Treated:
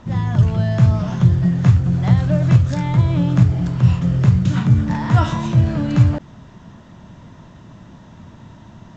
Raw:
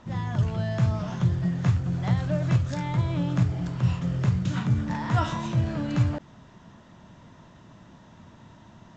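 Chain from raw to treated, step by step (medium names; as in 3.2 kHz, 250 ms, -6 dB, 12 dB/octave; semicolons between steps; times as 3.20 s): bass shelf 250 Hz +6 dB; trim +5.5 dB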